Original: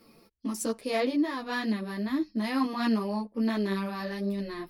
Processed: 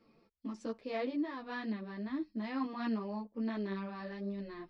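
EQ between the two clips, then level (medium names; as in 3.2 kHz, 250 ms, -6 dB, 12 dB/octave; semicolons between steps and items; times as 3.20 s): Gaussian low-pass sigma 1.9 samples; -8.5 dB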